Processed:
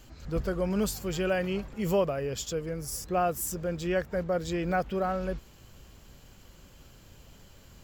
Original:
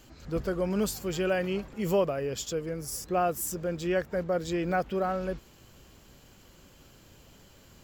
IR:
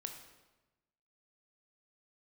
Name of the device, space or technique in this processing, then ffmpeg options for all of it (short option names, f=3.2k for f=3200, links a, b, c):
low shelf boost with a cut just above: -af "lowshelf=f=85:g=7.5,equalizer=f=320:t=o:w=0.77:g=-2.5"